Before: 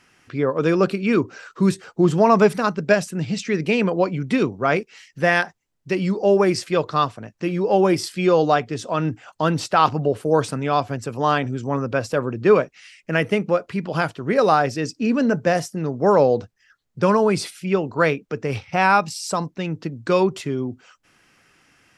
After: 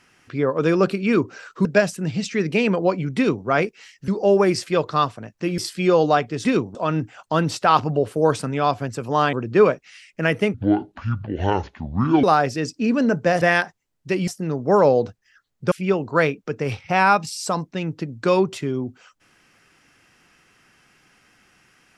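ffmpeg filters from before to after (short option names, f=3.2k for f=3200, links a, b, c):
-filter_complex "[0:a]asplit=12[a][b][c][d][e][f][g][h][i][j][k][l];[a]atrim=end=1.652[m];[b]atrim=start=2.788:end=5.222[n];[c]atrim=start=6.078:end=7.582[o];[d]atrim=start=7.968:end=8.842[p];[e]atrim=start=4.308:end=4.612[q];[f]atrim=start=8.838:end=11.422[r];[g]atrim=start=12.228:end=13.444[s];[h]atrim=start=13.44:end=14.44,asetpts=PTS-STARTPTS,asetrate=26019,aresample=44100[t];[i]atrim=start=14.436:end=15.622[u];[j]atrim=start=5.218:end=6.082[v];[k]atrim=start=15.618:end=17.062[w];[l]atrim=start=17.548[x];[m][n]acrossfade=d=0.004:c1=hsin:c2=hsin[y];[y][o]acrossfade=d=0.004:c1=hsin:c2=hsin[z];[z][p]acrossfade=d=0.004:c1=hsin:c2=hsin[aa];[aa][q]acrossfade=d=0.004:c1=hsin:c2=hsin[ab];[ab][r]acrossfade=d=0.004:c1=hsin:c2=hsin[ac];[ac][s]acrossfade=d=0.004:c1=hsin:c2=hsin[ad];[ad][t]acrossfade=d=0.004:c1=hsin:c2=hsin[ae];[ae][u]acrossfade=d=0.004:c1=hsin:c2=hsin[af];[af][v]acrossfade=d=0.004:c1=hsin:c2=hsin[ag];[ag][w]acrossfade=d=0.004:c1=hsin:c2=hsin[ah];[ah][x]acrossfade=d=0.004:c1=hsin:c2=hsin"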